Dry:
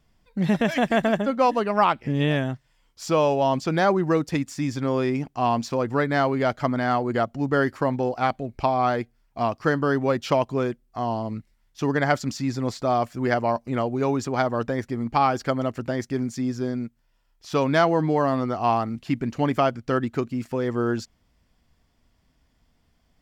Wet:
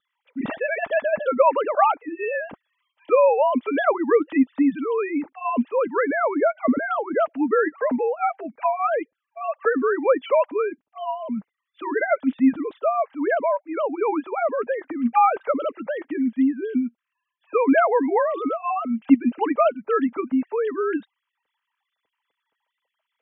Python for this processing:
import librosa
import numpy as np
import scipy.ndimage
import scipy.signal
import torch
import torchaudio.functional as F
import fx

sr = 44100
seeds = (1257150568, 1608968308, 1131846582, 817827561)

y = fx.sine_speech(x, sr)
y = fx.wow_flutter(y, sr, seeds[0], rate_hz=2.1, depth_cents=29.0)
y = fx.notch_comb(y, sr, f0_hz=360.0)
y = y * librosa.db_to_amplitude(3.0)